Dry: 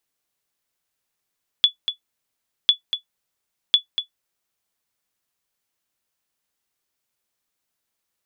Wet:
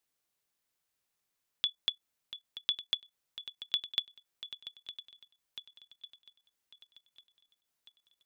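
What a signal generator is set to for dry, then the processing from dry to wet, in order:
sonar ping 3430 Hz, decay 0.11 s, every 1.05 s, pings 3, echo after 0.24 s, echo -9.5 dB -4.5 dBFS
dynamic EQ 3100 Hz, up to -7 dB, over -31 dBFS, Q 2.8; swung echo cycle 1.148 s, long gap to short 1.5:1, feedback 43%, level -13 dB; level quantiser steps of 14 dB

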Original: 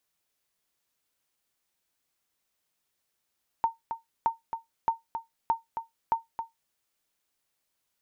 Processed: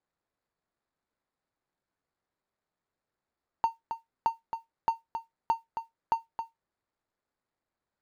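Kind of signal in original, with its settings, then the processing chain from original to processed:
sonar ping 912 Hz, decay 0.16 s, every 0.62 s, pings 5, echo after 0.27 s, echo -8.5 dB -16 dBFS
median filter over 15 samples

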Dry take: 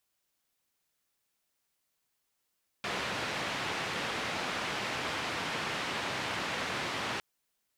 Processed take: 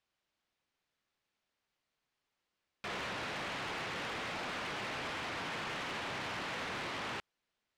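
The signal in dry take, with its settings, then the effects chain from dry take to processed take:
noise band 96–2600 Hz, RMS -35 dBFS 4.36 s
LPF 3900 Hz 12 dB/oct; soft clip -36 dBFS

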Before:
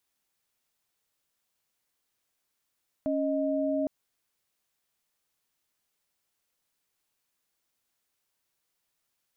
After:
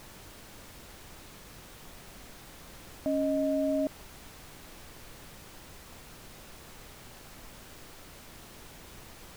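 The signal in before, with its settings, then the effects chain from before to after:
chord C#4/D#5 sine, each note -28 dBFS 0.81 s
added noise pink -49 dBFS

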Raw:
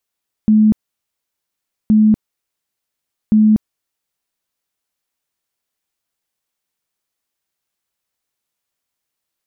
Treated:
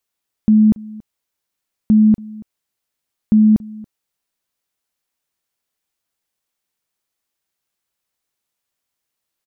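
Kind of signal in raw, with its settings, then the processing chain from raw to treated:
tone bursts 215 Hz, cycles 52, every 1.42 s, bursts 3, -7 dBFS
echo 0.281 s -22 dB

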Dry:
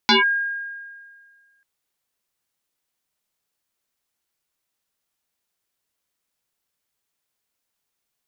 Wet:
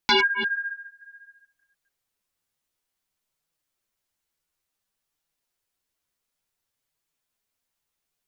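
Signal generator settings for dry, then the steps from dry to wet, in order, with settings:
FM tone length 1.54 s, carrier 1620 Hz, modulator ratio 0.38, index 5.6, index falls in 0.15 s linear, decay 1.80 s, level -10.5 dB
reverse delay 0.145 s, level -8 dB; low shelf 72 Hz +9.5 dB; flange 0.57 Hz, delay 5.8 ms, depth 7.8 ms, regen 0%

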